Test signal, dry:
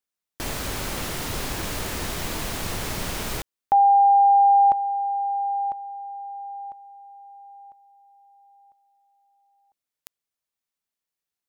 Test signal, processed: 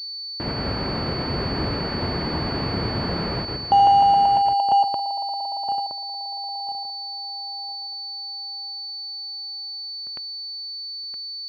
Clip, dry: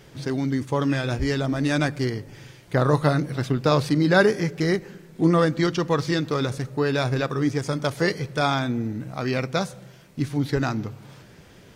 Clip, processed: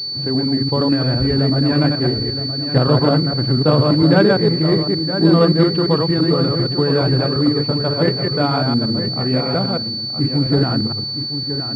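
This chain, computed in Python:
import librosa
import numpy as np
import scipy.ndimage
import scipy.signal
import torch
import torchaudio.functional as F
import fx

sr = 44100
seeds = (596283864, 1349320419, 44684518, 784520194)

y = fx.reverse_delay(x, sr, ms=115, wet_db=-2.0)
y = scipy.signal.sosfilt(scipy.signal.butter(2, 78.0, 'highpass', fs=sr, output='sos'), y)
y = fx.tilt_shelf(y, sr, db=4.0, hz=650.0)
y = y + 10.0 ** (-9.5 / 20.0) * np.pad(y, (int(968 * sr / 1000.0), 0))[:len(y)]
y = fx.pwm(y, sr, carrier_hz=4500.0)
y = y * librosa.db_to_amplitude(2.5)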